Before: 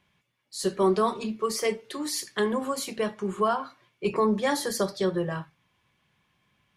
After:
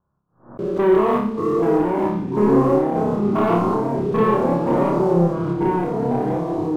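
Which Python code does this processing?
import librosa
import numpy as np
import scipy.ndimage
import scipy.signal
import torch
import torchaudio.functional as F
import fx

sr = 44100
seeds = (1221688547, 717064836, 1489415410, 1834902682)

y = fx.spec_steps(x, sr, hold_ms=200)
y = scipy.signal.sosfilt(scipy.signal.butter(12, 1400.0, 'lowpass', fs=sr, output='sos'), y)
y = fx.low_shelf(y, sr, hz=100.0, db=7.0)
y = fx.hum_notches(y, sr, base_hz=50, count=6)
y = fx.leveller(y, sr, passes=2)
y = fx.echo_pitch(y, sr, ms=680, semitones=-3, count=3, db_per_echo=-3.0)
y = fx.room_flutter(y, sr, wall_m=5.0, rt60_s=0.52)
y = fx.pre_swell(y, sr, db_per_s=150.0)
y = y * 10.0 ** (2.0 / 20.0)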